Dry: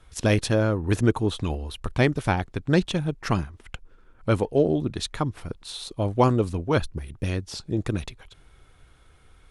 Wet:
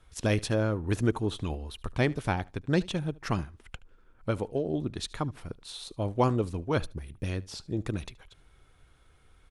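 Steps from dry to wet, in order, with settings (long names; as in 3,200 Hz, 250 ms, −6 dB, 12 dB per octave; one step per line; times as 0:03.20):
0:04.30–0:04.74: downward compressor, threshold −20 dBFS, peak gain reduction 6.5 dB
on a send: repeating echo 74 ms, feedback 18%, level −22.5 dB
on the sum: level −5.5 dB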